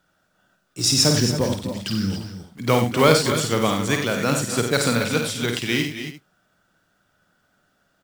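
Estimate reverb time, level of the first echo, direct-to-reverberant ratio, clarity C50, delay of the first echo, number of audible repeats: no reverb audible, −6.0 dB, no reverb audible, no reverb audible, 51 ms, 5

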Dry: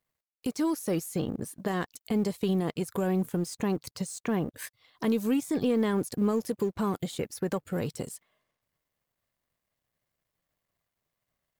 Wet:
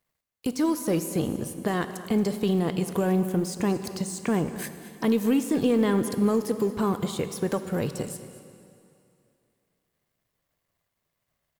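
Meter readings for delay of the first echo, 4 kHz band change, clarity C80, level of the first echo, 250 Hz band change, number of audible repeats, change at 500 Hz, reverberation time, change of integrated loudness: 227 ms, +4.0 dB, 10.5 dB, −16.5 dB, +4.0 dB, 1, +4.0 dB, 2.6 s, +4.0 dB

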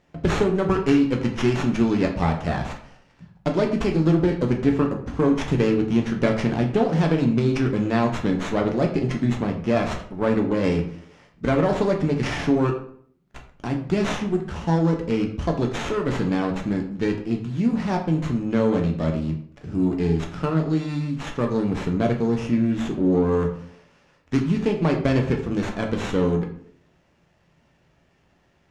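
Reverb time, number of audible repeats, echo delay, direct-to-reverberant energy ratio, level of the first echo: 0.60 s, no echo audible, no echo audible, 1.5 dB, no echo audible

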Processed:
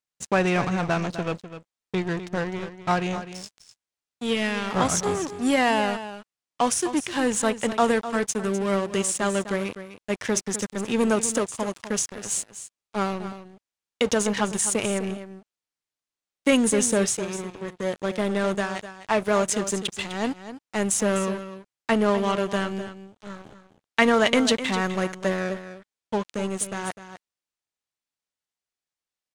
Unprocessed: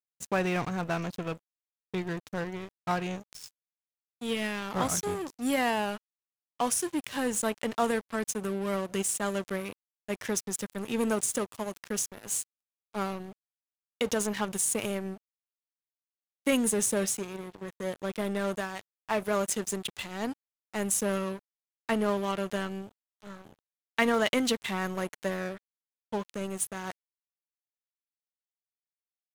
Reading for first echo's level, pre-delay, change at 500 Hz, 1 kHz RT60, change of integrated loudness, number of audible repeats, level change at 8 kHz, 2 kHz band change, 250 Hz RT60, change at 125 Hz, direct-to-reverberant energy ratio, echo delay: −12.0 dB, no reverb audible, +7.0 dB, no reverb audible, +6.0 dB, 1, +4.5 dB, +6.5 dB, no reverb audible, +6.5 dB, no reverb audible, 253 ms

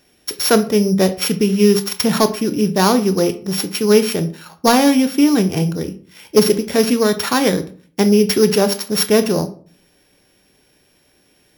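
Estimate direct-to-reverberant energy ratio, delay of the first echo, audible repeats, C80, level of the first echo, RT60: 10.0 dB, no echo audible, no echo audible, 19.0 dB, no echo audible, 0.45 s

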